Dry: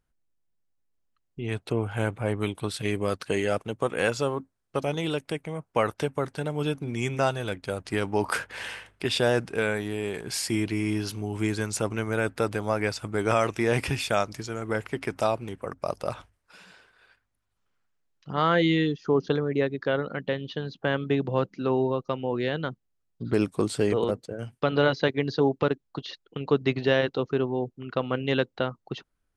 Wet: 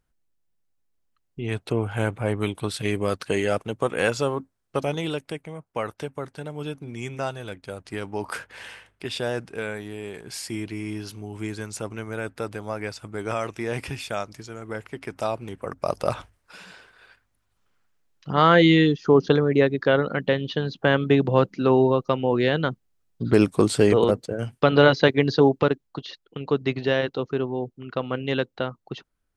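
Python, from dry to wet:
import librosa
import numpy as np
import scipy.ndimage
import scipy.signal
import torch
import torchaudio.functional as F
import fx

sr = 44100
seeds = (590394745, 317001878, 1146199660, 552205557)

y = fx.gain(x, sr, db=fx.line((4.82, 2.5), (5.69, -4.5), (15.0, -4.5), (16.11, 6.5), (25.34, 6.5), (26.11, 0.0)))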